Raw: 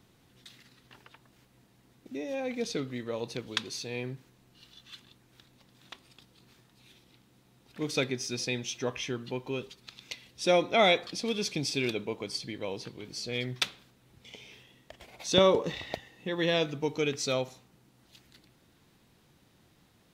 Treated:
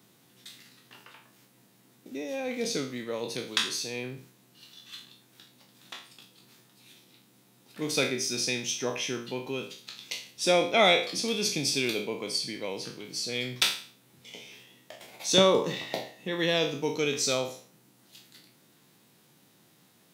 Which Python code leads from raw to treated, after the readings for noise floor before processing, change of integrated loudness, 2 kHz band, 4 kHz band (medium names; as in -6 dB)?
-65 dBFS, +2.5 dB, +3.0 dB, +4.5 dB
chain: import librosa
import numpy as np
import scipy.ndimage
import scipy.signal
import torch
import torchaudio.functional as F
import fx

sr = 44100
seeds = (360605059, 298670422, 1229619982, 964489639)

y = fx.spec_trails(x, sr, decay_s=0.45)
y = scipy.signal.sosfilt(scipy.signal.butter(4, 130.0, 'highpass', fs=sr, output='sos'), y)
y = fx.high_shelf(y, sr, hz=7100.0, db=10.5)